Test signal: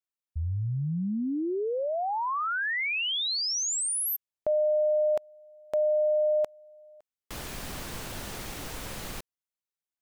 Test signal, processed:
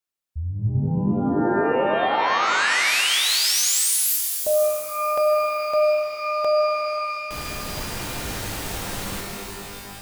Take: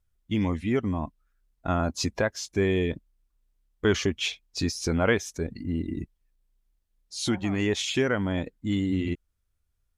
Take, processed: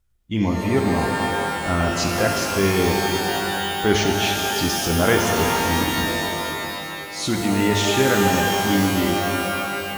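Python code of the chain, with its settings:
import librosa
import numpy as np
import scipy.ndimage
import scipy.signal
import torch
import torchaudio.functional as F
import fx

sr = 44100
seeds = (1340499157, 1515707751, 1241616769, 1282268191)

y = fx.transient(x, sr, attack_db=-3, sustain_db=2)
y = fx.rev_shimmer(y, sr, seeds[0], rt60_s=2.9, semitones=12, shimmer_db=-2, drr_db=1.5)
y = F.gain(torch.from_numpy(y), 4.5).numpy()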